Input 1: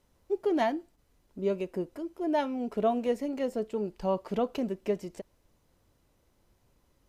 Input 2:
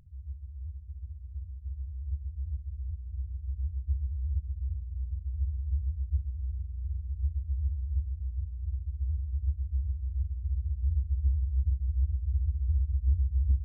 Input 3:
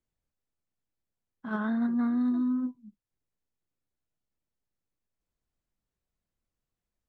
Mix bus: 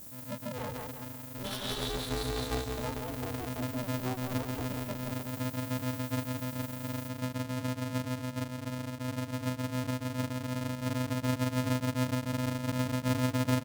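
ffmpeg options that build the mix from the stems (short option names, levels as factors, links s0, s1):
-filter_complex "[0:a]highpass=f=99:w=0.5412,highpass=f=99:w=1.3066,volume=0.282,asplit=2[s0][s1];[s1]volume=0.501[s2];[1:a]equalizer=f=74:w=5.5:g=-15,volume=1.12,asplit=2[s3][s4];[s4]volume=0.447[s5];[2:a]highpass=220,aemphasis=mode=production:type=50fm,aexciter=amount=13.2:drive=9.6:freq=2900,volume=0.841,asplit=2[s6][s7];[s7]volume=0.376[s8];[s0][s6]amix=inputs=2:normalize=0,aecho=1:1:7.1:0.48,acompressor=threshold=0.0158:ratio=6,volume=1[s9];[s2][s5][s8]amix=inputs=3:normalize=0,aecho=0:1:175|350|525|700|875|1050:1|0.43|0.185|0.0795|0.0342|0.0147[s10];[s3][s9][s10]amix=inputs=3:normalize=0,aeval=exprs='val(0)*sgn(sin(2*PI*190*n/s))':c=same"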